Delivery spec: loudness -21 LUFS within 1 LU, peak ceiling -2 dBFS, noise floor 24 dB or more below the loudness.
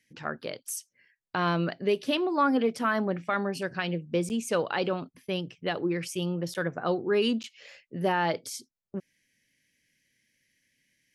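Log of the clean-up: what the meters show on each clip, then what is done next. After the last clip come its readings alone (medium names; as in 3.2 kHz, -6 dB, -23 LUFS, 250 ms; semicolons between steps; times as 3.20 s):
dropouts 3; longest dropout 9.2 ms; loudness -29.5 LUFS; peak level -15.5 dBFS; loudness target -21.0 LUFS
-> interpolate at 4.29/6.54/7.43 s, 9.2 ms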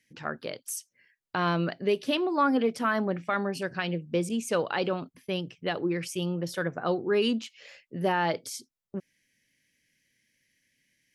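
dropouts 0; loudness -29.5 LUFS; peak level -15.5 dBFS; loudness target -21.0 LUFS
-> trim +8.5 dB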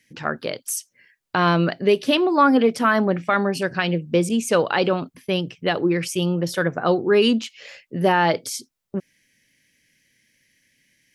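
loudness -21.0 LUFS; peak level -7.0 dBFS; noise floor -70 dBFS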